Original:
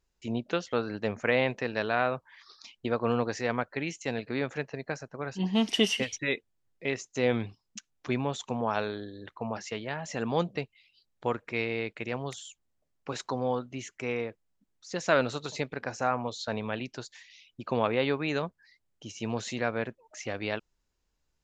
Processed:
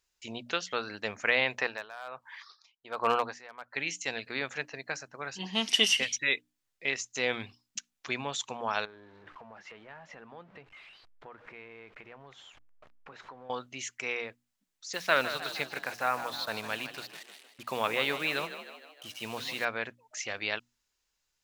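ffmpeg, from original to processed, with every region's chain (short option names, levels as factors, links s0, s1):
-filter_complex "[0:a]asettb=1/sr,asplit=3[s0][s1][s2];[s0]atrim=end=1.584[s3];[s1]atrim=start=1.58:end=3.75,asetpts=PTS-STARTPTS,afade=t=in:d=0.004:c=qsin,afade=t=out:st=2.166:d=0.004:c=qsin,equalizer=f=900:t=o:w=2:g=10,asoftclip=type=hard:threshold=0.316,aeval=exprs='val(0)*pow(10,-23*(0.5-0.5*cos(2*PI*1.3*n/s))/20)':c=same[s4];[s2]atrim=start=3.746[s5];[s3][s4]acrossfade=d=0.004:c1=hsin:c2=qsin[s6];[s6][s5]acrossfade=d=0.004:c1=qsin:c2=hsin,asettb=1/sr,asplit=3[s7][s8][s9];[s7]atrim=end=8.854[s10];[s8]atrim=start=8.85:end=13.5,asetpts=PTS-STARTPTS,afade=t=in:d=0.004:c=qsin,afade=t=out:st=4.646:d=0.004:c=qsin,aeval=exprs='val(0)+0.5*0.00891*sgn(val(0))':c=same,lowpass=1500,acompressor=threshold=0.00501:ratio=2.5:attack=3.2:release=140:knee=1:detection=peak[s11];[s9]atrim=start=13.496[s12];[s10][s11]acrossfade=d=0.004:c1=hsin:c2=qsin[s13];[s13][s12]acrossfade=d=0.004:c1=qsin:c2=hsin,asettb=1/sr,asplit=3[s14][s15][s16];[s14]atrim=end=14.934[s17];[s15]atrim=start=14.93:end=19.65,asetpts=PTS-STARTPTS,afade=t=in:d=0.004:c=qsin,afade=t=out:st=4.716:d=0.004:c=qsin,lowpass=f=4400:w=0.5412,lowpass=f=4400:w=1.3066,acrusher=bits=7:mix=0:aa=0.5,asplit=7[s18][s19][s20][s21][s22][s23][s24];[s19]adelay=154,afreqshift=39,volume=0.266[s25];[s20]adelay=308,afreqshift=78,volume=0.141[s26];[s21]adelay=462,afreqshift=117,volume=0.075[s27];[s22]adelay=616,afreqshift=156,volume=0.0398[s28];[s23]adelay=770,afreqshift=195,volume=0.0209[s29];[s24]adelay=924,afreqshift=234,volume=0.0111[s30];[s18][s25][s26][s27][s28][s29][s30]amix=inputs=7:normalize=0,atrim=end_sample=208152[s31];[s16]atrim=start=19.646[s32];[s17][s31]acrossfade=d=0.004:c1=hsin:c2=qsin[s33];[s33][s32]acrossfade=d=0.004:c1=qsin:c2=hsin,tiltshelf=f=810:g=-8.5,bandreject=f=60:t=h:w=6,bandreject=f=120:t=h:w=6,bandreject=f=180:t=h:w=6,bandreject=f=240:t=h:w=6,bandreject=f=300:t=h:w=6,volume=0.75"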